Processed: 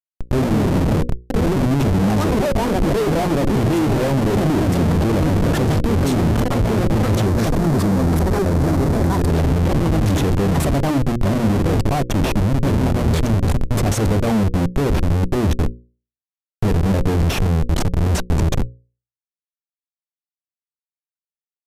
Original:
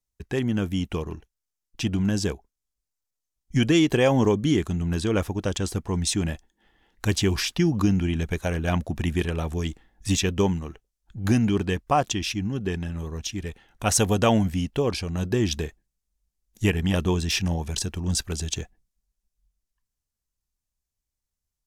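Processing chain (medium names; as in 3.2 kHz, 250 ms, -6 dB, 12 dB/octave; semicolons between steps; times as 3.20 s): band-stop 4.9 kHz, Q 10; ever faster or slower copies 175 ms, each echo +5 st, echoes 3; Schmitt trigger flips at -27 dBFS; tilt shelf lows +5.5 dB, about 860 Hz; hum notches 60/120/180/240/300/360/420/480/540 Hz; 7.26–9.30 s: peaking EQ 2.9 kHz -6 dB 0.85 oct; trim +4.5 dB; MP3 320 kbps 32 kHz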